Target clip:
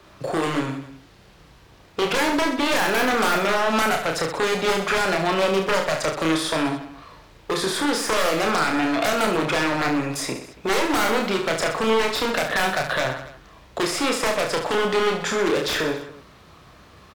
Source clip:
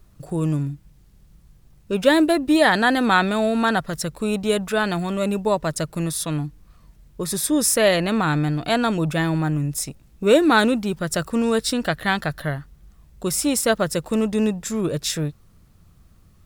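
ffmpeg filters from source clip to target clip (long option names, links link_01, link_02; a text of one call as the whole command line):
ffmpeg -i in.wav -filter_complex "[0:a]highpass=56,acrossover=split=350 5100:gain=0.141 1 0.126[link_01][link_02][link_03];[link_01][link_02][link_03]amix=inputs=3:normalize=0,aeval=exprs='0.708*(cos(1*acos(clip(val(0)/0.708,-1,1)))-cos(1*PI/2))+0.178*(cos(4*acos(clip(val(0)/0.708,-1,1)))-cos(4*PI/2))':channel_layout=same,asplit=2[link_04][link_05];[link_05]acompressor=threshold=-26dB:ratio=6,volume=2.5dB[link_06];[link_04][link_06]amix=inputs=2:normalize=0,aeval=exprs='0.126*(abs(mod(val(0)/0.126+3,4)-2)-1)':channel_layout=same,acrossover=split=270|2200[link_07][link_08][link_09];[link_07]acompressor=threshold=-41dB:ratio=4[link_10];[link_08]acompressor=threshold=-30dB:ratio=4[link_11];[link_09]acompressor=threshold=-40dB:ratio=4[link_12];[link_10][link_11][link_12]amix=inputs=3:normalize=0,acrossover=split=1100[link_13][link_14];[link_13]asoftclip=type=hard:threshold=-30dB[link_15];[link_15][link_14]amix=inputs=2:normalize=0,aecho=1:1:30|69|119.7|185.6|271.3:0.631|0.398|0.251|0.158|0.1,asetrate=42336,aresample=44100,volume=8.5dB" out.wav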